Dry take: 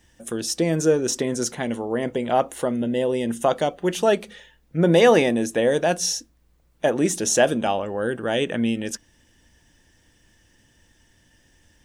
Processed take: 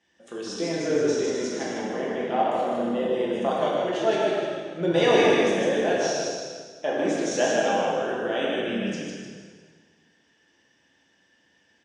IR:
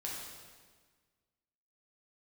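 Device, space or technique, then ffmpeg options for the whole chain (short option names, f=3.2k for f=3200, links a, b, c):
supermarket ceiling speaker: -filter_complex "[0:a]lowpass=6.4k,asettb=1/sr,asplit=3[a][b][c];[a]atrim=end=4.124[d];[b]atrim=start=4.12:end=5.59,asetpts=PTS-STARTPTS,afade=t=in:d=0.004:c=qsin,afade=t=out:st=1.466:d=0.004:c=qsin,aemphasis=mode=production:type=cd[e];[c]atrim=start=5.586[f];[d][e]acrossfade=d=0.004:c1=hsin:c2=qsin[g];[g][f]acrossfade=d=0.004:c1=qsin:c2=hsin,asplit=6[h][i][j][k][l][m];[i]adelay=152,afreqshift=-34,volume=-3dB[n];[j]adelay=304,afreqshift=-68,volume=-10.5dB[o];[k]adelay=456,afreqshift=-102,volume=-18.1dB[p];[l]adelay=608,afreqshift=-136,volume=-25.6dB[q];[m]adelay=760,afreqshift=-170,volume=-33.1dB[r];[h][n][o][p][q][r]amix=inputs=6:normalize=0,highpass=250,lowpass=5.8k[s];[1:a]atrim=start_sample=2205[t];[s][t]afir=irnorm=-1:irlink=0,volume=-4dB"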